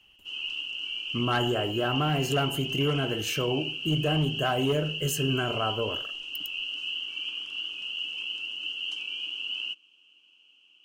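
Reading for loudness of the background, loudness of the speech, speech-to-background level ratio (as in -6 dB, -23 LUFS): -32.0 LUFS, -29.0 LUFS, 3.0 dB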